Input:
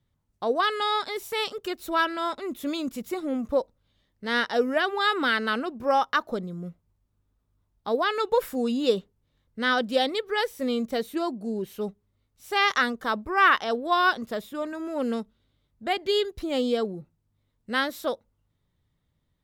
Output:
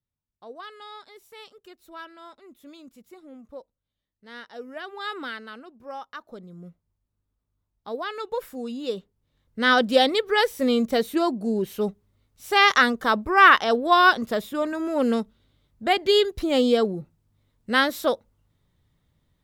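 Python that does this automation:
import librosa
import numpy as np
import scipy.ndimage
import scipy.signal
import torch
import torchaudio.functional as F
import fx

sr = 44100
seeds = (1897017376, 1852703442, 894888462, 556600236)

y = fx.gain(x, sr, db=fx.line((4.49, -16.5), (5.16, -7.5), (5.5, -14.5), (6.19, -14.5), (6.6, -6.5), (8.88, -6.5), (9.73, 5.5)))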